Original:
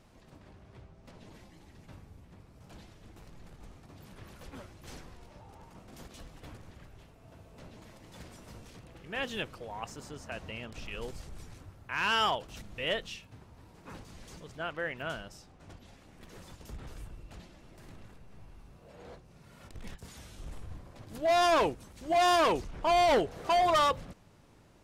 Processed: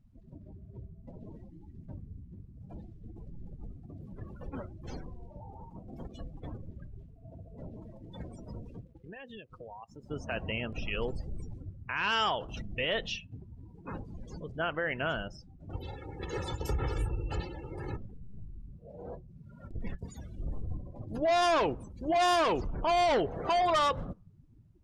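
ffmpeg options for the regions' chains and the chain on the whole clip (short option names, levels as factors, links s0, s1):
-filter_complex "[0:a]asettb=1/sr,asplit=3[s0][s1][s2];[s0]atrim=end=8.834[s3];[s1]atrim=start=8.83:end=10.11,asetpts=PTS-STARTPTS,afade=t=in:d=0.004:c=qsin,afade=t=out:st=1.276:d=0.004:c=qsin,aeval=exprs='sgn(val(0))*max(abs(val(0))-0.002,0)':c=same,acompressor=threshold=0.00447:ratio=20:attack=3.2:release=140:knee=1:detection=peak[s4];[s2]atrim=start=10.106[s5];[s3][s4]acrossfade=d=0.004:c1=hsin:c2=qsin[s6];[s6][s5]acrossfade=d=0.004:c1=qsin:c2=hsin,asettb=1/sr,asplit=3[s7][s8][s9];[s7]atrim=end=15.734[s10];[s8]atrim=start=15.73:end=17.97,asetpts=PTS-STARTPTS,afade=t=in:d=0.004:c=qsin,afade=t=out:st=2.236:d=0.004:c=qsin,highpass=53,aecho=1:1:2.3:0.69,atrim=end_sample=98784,acontrast=72[s11];[s9]atrim=start=17.966[s12];[s10][s11]acrossfade=d=0.004:c1=hsin:c2=qsin[s13];[s13][s12]acrossfade=d=0.004:c1=qsin:c2=hsin,afftdn=nr=31:nf=-48,alimiter=level_in=1.88:limit=0.0631:level=0:latency=1:release=86,volume=0.531,volume=2.37"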